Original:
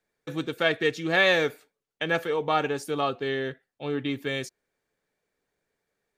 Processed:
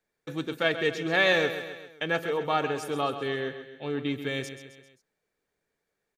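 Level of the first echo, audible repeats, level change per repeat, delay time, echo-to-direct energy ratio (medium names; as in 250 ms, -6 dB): -11.0 dB, 4, -5.0 dB, 132 ms, -9.5 dB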